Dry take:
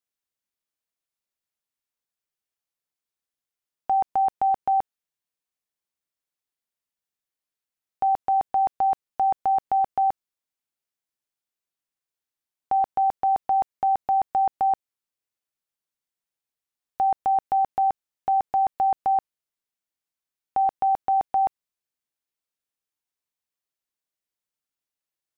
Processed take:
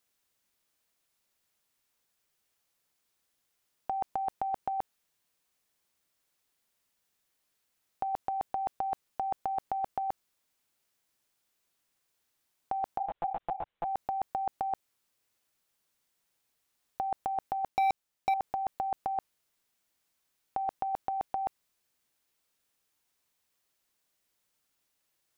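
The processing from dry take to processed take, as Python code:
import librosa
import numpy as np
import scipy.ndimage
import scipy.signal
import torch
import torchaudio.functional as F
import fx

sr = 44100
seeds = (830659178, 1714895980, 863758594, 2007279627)

y = fx.over_compress(x, sr, threshold_db=-28.0, ratio=-0.5)
y = fx.lpc_monotone(y, sr, seeds[0], pitch_hz=170.0, order=16, at=(12.98, 13.85))
y = fx.leveller(y, sr, passes=3, at=(17.68, 18.34))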